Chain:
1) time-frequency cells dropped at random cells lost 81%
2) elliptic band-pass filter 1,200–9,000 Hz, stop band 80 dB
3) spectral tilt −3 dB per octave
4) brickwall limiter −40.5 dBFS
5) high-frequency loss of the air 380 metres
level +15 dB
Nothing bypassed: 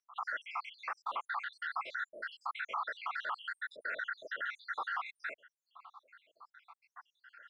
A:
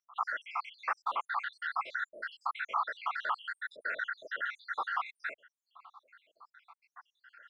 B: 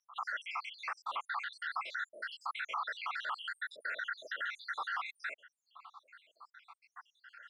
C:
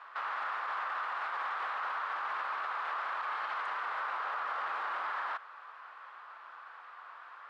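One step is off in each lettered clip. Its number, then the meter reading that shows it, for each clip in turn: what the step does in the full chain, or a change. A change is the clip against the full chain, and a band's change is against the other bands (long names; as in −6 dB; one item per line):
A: 4, change in crest factor +6.0 dB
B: 3, 4 kHz band +5.0 dB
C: 1, 1 kHz band +5.0 dB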